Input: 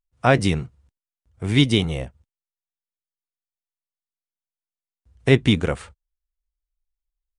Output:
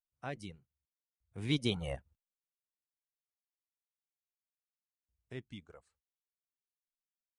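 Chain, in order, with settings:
source passing by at 0:02.09, 15 m/s, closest 2.1 metres
reverb reduction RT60 1.3 s
level −2.5 dB

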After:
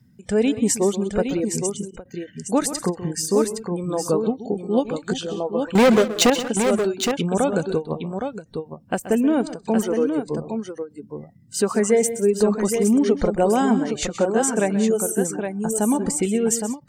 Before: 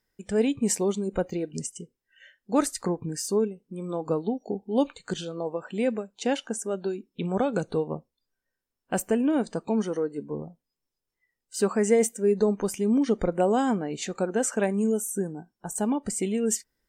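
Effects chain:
reverb reduction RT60 0.8 s
0:05.75–0:06.30: leveller curve on the samples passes 5
in parallel at +1.5 dB: brickwall limiter −19.5 dBFS, peak gain reduction 9.5 dB
on the sum: noise in a band 92–230 Hz −55 dBFS
on a send: multi-tap delay 129/185/815 ms −14/−17/−6.5 dB
on the sum: every ending faded ahead of time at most 300 dB per second

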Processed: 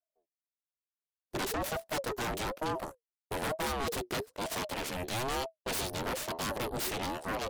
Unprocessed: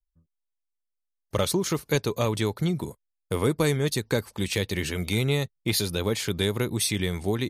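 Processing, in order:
harmonic generator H 4 −7 dB, 7 −22 dB, 8 −8 dB, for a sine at −11 dBFS
soft clipping −20.5 dBFS, distortion −8 dB
ring modulator whose carrier an LFO sweeps 510 Hz, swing 30%, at 1.1 Hz
level −6.5 dB

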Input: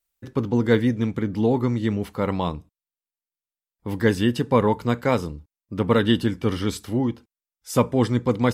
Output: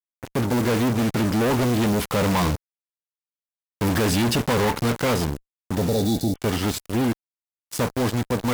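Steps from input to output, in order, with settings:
one scale factor per block 5 bits
source passing by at 0:03.10, 7 m/s, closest 5.3 metres
high-shelf EQ 5,000 Hz +2.5 dB
fuzz pedal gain 44 dB, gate −45 dBFS
healed spectral selection 0:05.80–0:06.35, 860–3,400 Hz both
level −5.5 dB

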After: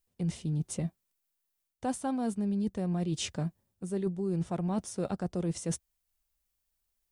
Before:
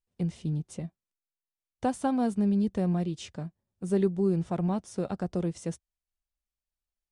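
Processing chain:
high-shelf EQ 9,200 Hz +10.5 dB
reversed playback
downward compressor 10 to 1, threshold −35 dBFS, peak gain reduction 15.5 dB
reversed playback
level +6.5 dB

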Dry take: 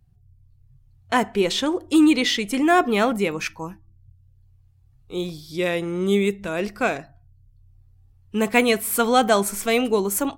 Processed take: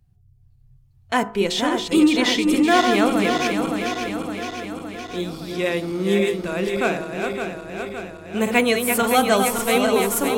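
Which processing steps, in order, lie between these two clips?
feedback delay that plays each chunk backwards 282 ms, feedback 78%, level −5.5 dB
hum removal 52.63 Hz, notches 29

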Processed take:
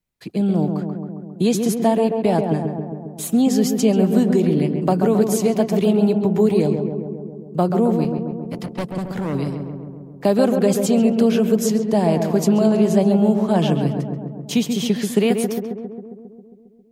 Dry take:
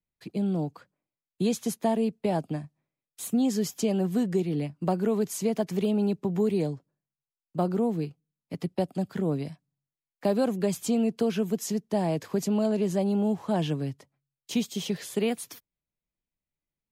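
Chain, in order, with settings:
0:08.04–0:09.35: gain into a clipping stage and back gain 30.5 dB
on a send: feedback echo with a low-pass in the loop 135 ms, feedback 72%, low-pass 1,500 Hz, level −5 dB
on the sum: level +8 dB

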